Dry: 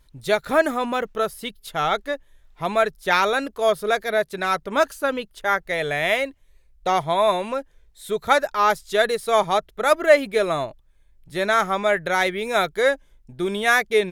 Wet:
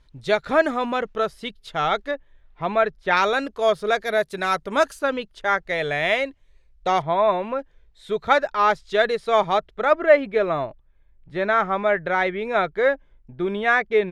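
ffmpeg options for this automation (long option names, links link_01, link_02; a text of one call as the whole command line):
ffmpeg -i in.wav -af "asetnsamples=nb_out_samples=441:pad=0,asendcmd='2.11 lowpass f 2800;3.17 lowpass f 6200;4.05 lowpass f 10000;4.99 lowpass f 5600;7.02 lowpass f 2200;7.59 lowpass f 4000;9.85 lowpass f 2300',lowpass=5100" out.wav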